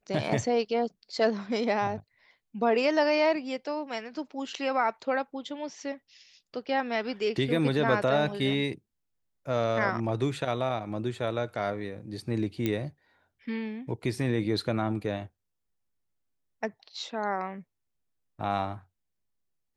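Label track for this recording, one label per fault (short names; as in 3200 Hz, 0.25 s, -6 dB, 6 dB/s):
12.660000	12.660000	pop -15 dBFS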